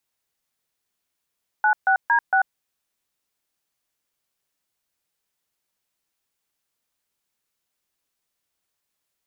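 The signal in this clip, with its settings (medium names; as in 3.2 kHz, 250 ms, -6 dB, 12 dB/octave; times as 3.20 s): DTMF "96D6", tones 91 ms, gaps 138 ms, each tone -17.5 dBFS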